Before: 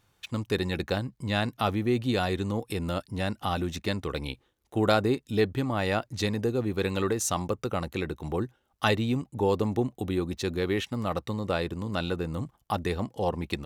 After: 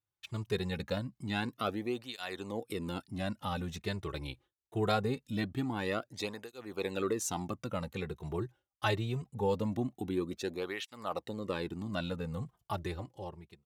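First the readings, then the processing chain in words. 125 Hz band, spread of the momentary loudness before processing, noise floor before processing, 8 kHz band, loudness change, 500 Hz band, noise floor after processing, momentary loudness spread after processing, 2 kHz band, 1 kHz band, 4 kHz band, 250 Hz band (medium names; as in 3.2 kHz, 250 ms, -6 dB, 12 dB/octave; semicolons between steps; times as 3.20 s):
-7.5 dB, 7 LU, -71 dBFS, -7.0 dB, -7.5 dB, -7.5 dB, under -85 dBFS, 9 LU, -7.0 dB, -7.0 dB, -7.0 dB, -7.5 dB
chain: fade out at the end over 0.93 s; gate with hold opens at -55 dBFS; cancelling through-zero flanger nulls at 0.23 Hz, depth 4.6 ms; trim -4 dB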